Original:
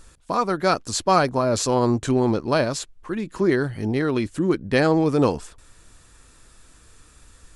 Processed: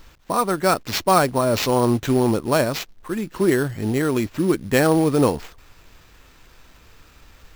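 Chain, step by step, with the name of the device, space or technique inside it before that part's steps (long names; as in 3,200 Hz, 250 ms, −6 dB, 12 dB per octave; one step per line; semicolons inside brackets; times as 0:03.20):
early companding sampler (sample-rate reduction 9,800 Hz, jitter 0%; log-companded quantiser 6 bits)
level +1.5 dB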